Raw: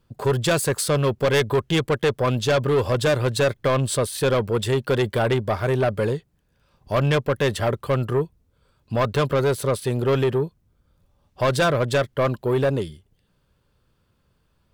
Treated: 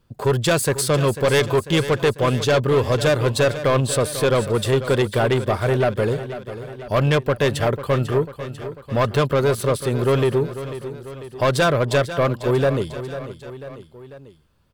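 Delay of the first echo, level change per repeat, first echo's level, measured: 495 ms, -4.5 dB, -12.5 dB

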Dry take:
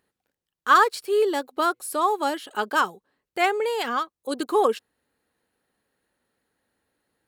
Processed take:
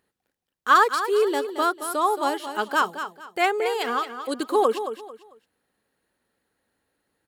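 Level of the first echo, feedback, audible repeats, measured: -10.0 dB, 28%, 3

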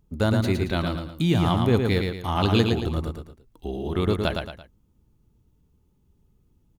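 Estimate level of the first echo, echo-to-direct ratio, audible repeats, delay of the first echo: -4.5 dB, -4.0 dB, 3, 112 ms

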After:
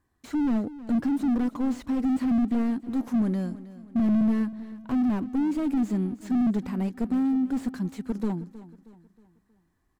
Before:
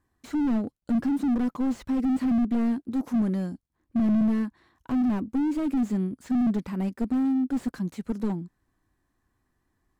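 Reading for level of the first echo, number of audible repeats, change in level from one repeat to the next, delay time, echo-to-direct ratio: -16.5 dB, 3, -7.0 dB, 316 ms, -15.5 dB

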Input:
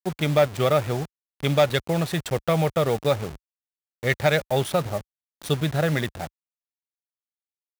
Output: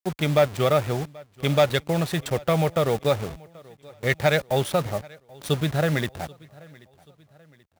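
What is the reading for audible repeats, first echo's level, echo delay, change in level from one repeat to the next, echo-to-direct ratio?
2, -24.0 dB, 783 ms, -7.0 dB, -23.0 dB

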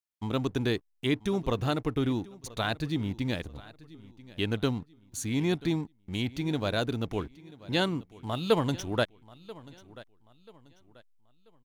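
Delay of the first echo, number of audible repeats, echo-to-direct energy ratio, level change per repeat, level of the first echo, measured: 986 ms, 2, -19.5 dB, -9.5 dB, -20.0 dB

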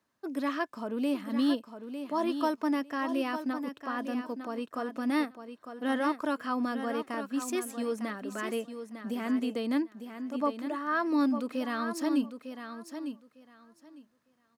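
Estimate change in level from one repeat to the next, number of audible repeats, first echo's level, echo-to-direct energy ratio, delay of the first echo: -15.0 dB, 2, -9.0 dB, -9.0 dB, 903 ms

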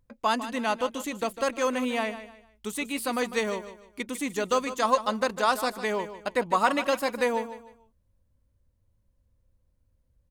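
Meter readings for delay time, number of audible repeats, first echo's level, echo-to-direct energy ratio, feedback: 151 ms, 3, -12.5 dB, -12.0 dB, 31%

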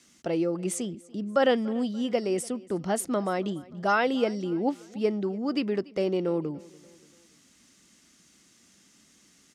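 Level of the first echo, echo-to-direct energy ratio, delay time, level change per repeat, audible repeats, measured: -22.5 dB, -21.5 dB, 289 ms, -7.0 dB, 2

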